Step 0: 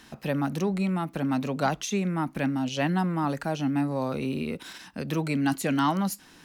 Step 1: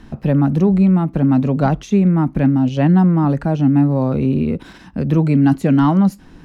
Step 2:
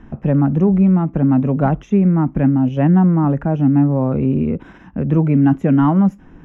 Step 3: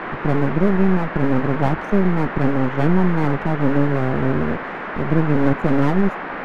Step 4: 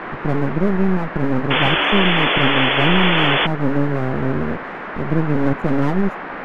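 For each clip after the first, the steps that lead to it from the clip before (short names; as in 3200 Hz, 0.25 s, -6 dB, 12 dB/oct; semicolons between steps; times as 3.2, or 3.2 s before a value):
tilt -4 dB/oct; gain +5 dB
running mean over 10 samples
half-wave rectifier; band noise 160–1800 Hz -29 dBFS
painted sound noise, 1.5–3.47, 270–3500 Hz -17 dBFS; gain -1 dB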